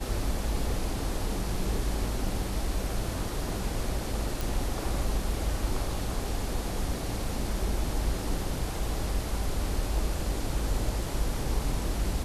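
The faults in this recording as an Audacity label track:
4.410000	4.410000	pop

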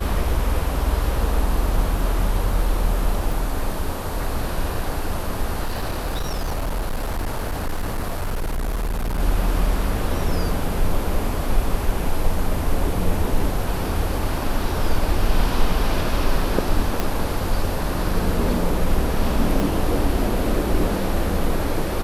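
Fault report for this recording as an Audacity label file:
3.320000	3.320000	dropout 2.7 ms
5.650000	9.200000	clipped -20 dBFS
17.000000	17.000000	pop -7 dBFS
19.600000	19.600000	pop

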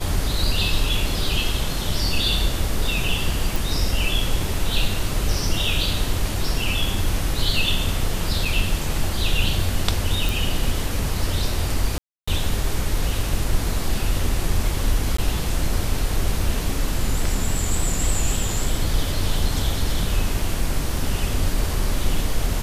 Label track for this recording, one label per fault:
3.560000	3.560000	pop
8.450000	8.450000	dropout 3.7 ms
10.290000	10.290000	pop
11.980000	12.280000	dropout 295 ms
15.170000	15.180000	dropout 14 ms

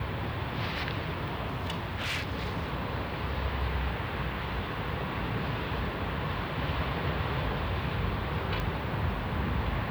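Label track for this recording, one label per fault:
1.480000	2.700000	clipped -28 dBFS
8.600000	8.600000	pop

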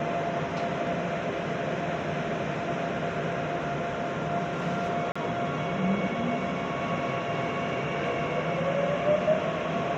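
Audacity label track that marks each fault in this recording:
5.120000	5.160000	dropout 35 ms

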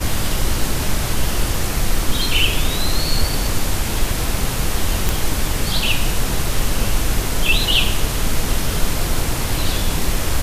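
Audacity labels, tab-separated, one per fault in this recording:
5.090000	5.090000	pop

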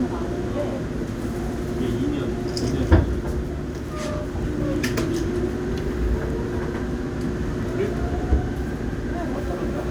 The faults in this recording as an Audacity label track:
4.980000	4.980000	pop

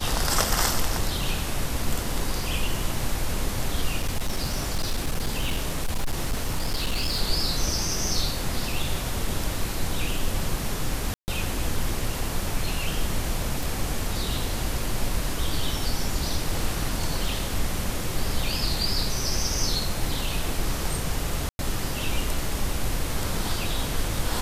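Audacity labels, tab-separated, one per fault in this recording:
3.980000	7.210000	clipped -20.5 dBFS
11.140000	11.280000	dropout 139 ms
13.630000	13.630000	pop
21.490000	21.590000	dropout 101 ms

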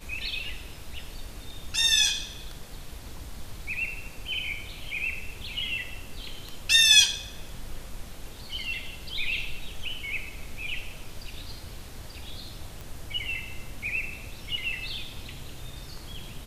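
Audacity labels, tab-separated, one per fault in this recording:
7.060000	7.060000	dropout 2.7 ms
12.810000	12.810000	pop

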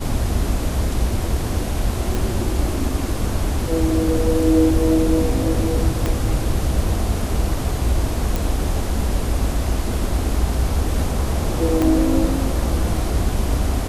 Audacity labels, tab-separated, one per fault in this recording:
2.150000	2.150000	pop
6.060000	6.060000	pop -8 dBFS
8.360000	8.360000	pop
11.820000	11.820000	pop -7 dBFS

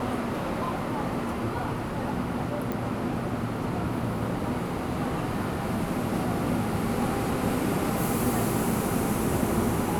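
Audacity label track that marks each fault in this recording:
2.720000	2.720000	pop

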